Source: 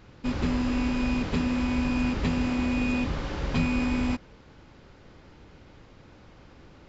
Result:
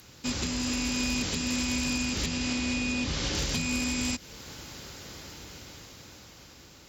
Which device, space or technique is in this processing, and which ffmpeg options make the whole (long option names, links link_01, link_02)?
FM broadcast chain: -filter_complex "[0:a]highpass=frequency=44:width=0.5412,highpass=frequency=44:width=1.3066,dynaudnorm=framelen=370:gausssize=9:maxgain=10dB,acrossover=split=600|1700[link_01][link_02][link_03];[link_01]acompressor=threshold=-21dB:ratio=4[link_04];[link_02]acompressor=threshold=-42dB:ratio=4[link_05];[link_03]acompressor=threshold=-34dB:ratio=4[link_06];[link_04][link_05][link_06]amix=inputs=3:normalize=0,aemphasis=mode=production:type=75fm,alimiter=limit=-19dB:level=0:latency=1:release=387,asoftclip=type=hard:threshold=-21dB,lowpass=frequency=15000:width=0.5412,lowpass=frequency=15000:width=1.3066,aemphasis=mode=production:type=75fm,asettb=1/sr,asplit=3[link_07][link_08][link_09];[link_07]atrim=end=2.264[link_10];[link_08]atrim=start=2.26:end=3.35,asetpts=PTS-STARTPTS,afade=type=in:duration=0.004:curve=qsin,afade=type=out:start_time=1.086:duration=0.004:curve=qsin,lowpass=6200[link_11];[link_09]atrim=start=3.346[link_12];[link_10][link_11]acrossfade=duration=0.004:curve1=hsin:curve2=qsin[link_13];[link_13][link_12]acrossfade=duration=0.004:curve1=qsin:curve2=hsin,volume=-2dB"